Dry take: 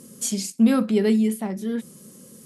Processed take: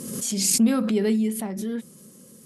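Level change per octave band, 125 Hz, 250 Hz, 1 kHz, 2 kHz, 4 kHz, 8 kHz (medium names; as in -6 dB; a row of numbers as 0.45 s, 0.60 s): no reading, -2.5 dB, -2.5 dB, -1.5 dB, +4.5 dB, +6.0 dB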